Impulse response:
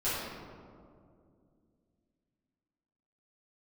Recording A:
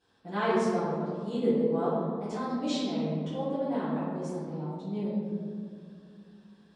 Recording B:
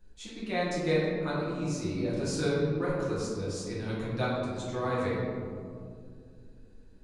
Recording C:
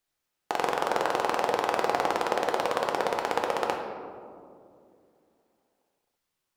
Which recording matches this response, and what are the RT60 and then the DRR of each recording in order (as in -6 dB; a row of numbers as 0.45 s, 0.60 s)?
A; 2.3 s, 2.3 s, 2.4 s; -14.0 dB, -8.5 dB, 1.0 dB